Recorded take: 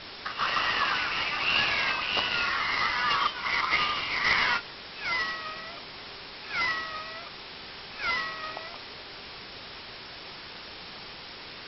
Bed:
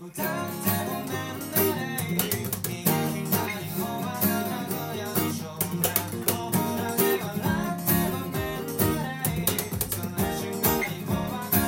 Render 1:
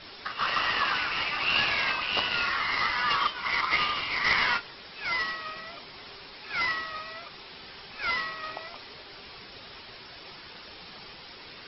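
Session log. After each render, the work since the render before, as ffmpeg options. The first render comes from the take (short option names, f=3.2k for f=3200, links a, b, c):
-af "afftdn=nr=6:nf=-43"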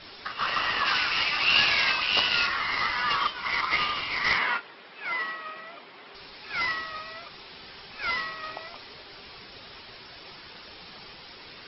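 -filter_complex "[0:a]asettb=1/sr,asplit=3[a][b][c];[a]atrim=end=0.864[d];[b]atrim=start=0.86:end=2.47,asetpts=PTS-STARTPTS,afade=t=in:d=0.004:c=qsin,afade=t=out:st=1.606:d=0.004:c=qsin,highshelf=f=3k:g=9.5[e];[c]atrim=start=2.466[f];[d][e]acrossfade=d=0.004:c1=hsin:c2=qsin[g];[g][f]acrossfade=d=0.004:c1=qsin:c2=hsin,asettb=1/sr,asplit=3[h][i][j];[h]atrim=end=4.384[k];[i]atrim=start=4.38:end=6.15,asetpts=PTS-STARTPTS,afade=t=in:d=0.004:c=qsin,afade=t=out:st=1.766:d=0.004:c=qsin,highpass=220,lowpass=2.8k[l];[j]atrim=start=6.146[m];[k][l]acrossfade=d=0.004:c1=hsin:c2=qsin[n];[n][m]acrossfade=d=0.004:c1=qsin:c2=hsin"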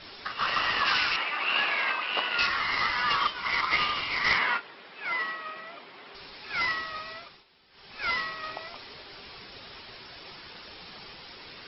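-filter_complex "[0:a]asettb=1/sr,asplit=3[a][b][c];[a]atrim=end=1.164[d];[b]atrim=start=1.16:end=2.39,asetpts=PTS-STARTPTS,afade=t=in:d=0.004:c=qsin,afade=t=out:st=1.226:d=0.004:c=qsin,highpass=300,lowpass=2.1k[e];[c]atrim=start=2.386[f];[d][e]acrossfade=d=0.004:c1=hsin:c2=qsin[g];[g][f]acrossfade=d=0.004:c1=qsin:c2=hsin,asplit=3[h][i][j];[h]atrim=end=7.45,asetpts=PTS-STARTPTS,afade=t=out:st=7.13:d=0.32:silence=0.141254[k];[i]atrim=start=7.45:end=7.7,asetpts=PTS-STARTPTS,volume=-17dB[l];[j]atrim=start=7.7,asetpts=PTS-STARTPTS,afade=t=in:d=0.32:silence=0.141254[m];[k][l][m]concat=n=3:v=0:a=1"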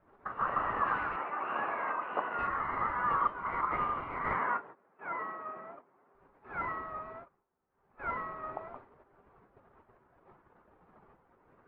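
-af "agate=range=-16dB:threshold=-43dB:ratio=16:detection=peak,lowpass=f=1.3k:w=0.5412,lowpass=f=1.3k:w=1.3066"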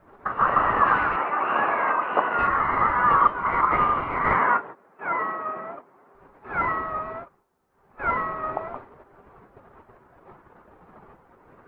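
-af "volume=11.5dB"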